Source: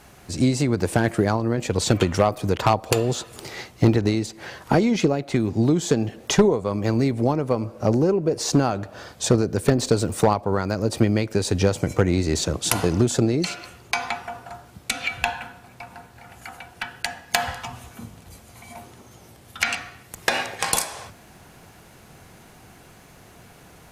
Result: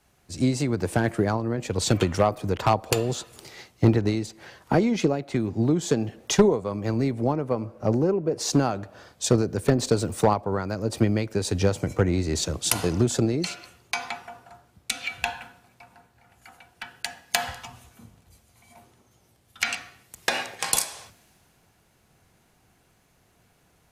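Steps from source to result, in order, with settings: three bands expanded up and down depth 40%; trim -3.5 dB

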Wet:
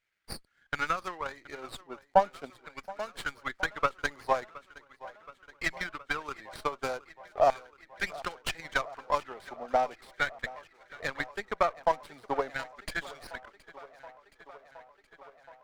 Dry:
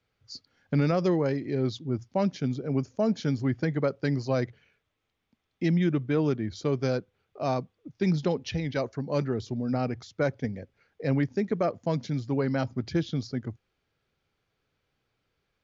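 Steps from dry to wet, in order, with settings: LFO high-pass saw down 0.4 Hz 690–1900 Hz; transient shaper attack +11 dB, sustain -2 dB; on a send: tape echo 721 ms, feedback 82%, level -19 dB, low-pass 4.7 kHz; on the sum: sliding maximum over 5 samples; trim -4.5 dB

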